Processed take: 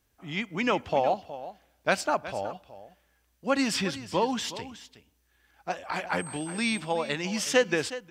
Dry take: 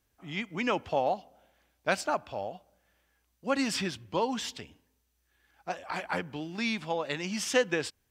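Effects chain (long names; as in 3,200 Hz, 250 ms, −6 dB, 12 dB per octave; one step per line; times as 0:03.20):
0:06.18–0:06.78: steady tone 8,300 Hz −44 dBFS
single-tap delay 367 ms −14.5 dB
level +3 dB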